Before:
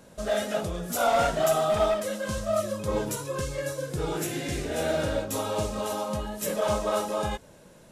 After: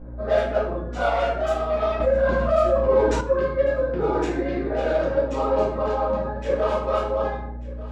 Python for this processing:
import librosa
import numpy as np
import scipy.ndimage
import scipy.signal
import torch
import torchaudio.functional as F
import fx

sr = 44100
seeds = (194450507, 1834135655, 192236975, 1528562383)

p1 = fx.wiener(x, sr, points=15)
p2 = fx.env_lowpass(p1, sr, base_hz=1700.0, full_db=-22.5)
p3 = scipy.signal.sosfilt(scipy.signal.butter(2, 3700.0, 'lowpass', fs=sr, output='sos'), p2)
p4 = fx.dereverb_blind(p3, sr, rt60_s=1.4)
p5 = scipy.signal.sosfilt(scipy.signal.butter(2, 280.0, 'highpass', fs=sr, output='sos'), p4)
p6 = fx.rider(p5, sr, range_db=4, speed_s=0.5)
p7 = fx.add_hum(p6, sr, base_hz=60, snr_db=12)
p8 = p7 + fx.echo_single(p7, sr, ms=1189, db=-18.5, dry=0)
p9 = fx.room_shoebox(p8, sr, seeds[0], volume_m3=130.0, walls='mixed', distance_m=2.0)
y = fx.env_flatten(p9, sr, amount_pct=50, at=(2.0, 3.21))